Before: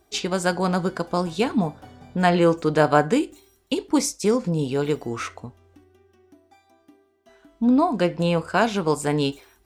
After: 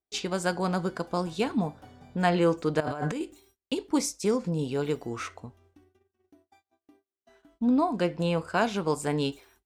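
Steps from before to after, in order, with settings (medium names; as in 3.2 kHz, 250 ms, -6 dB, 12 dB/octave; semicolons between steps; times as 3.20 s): 2.80–3.21 s: compressor with a negative ratio -26 dBFS, ratio -1; gate -55 dBFS, range -28 dB; trim -5.5 dB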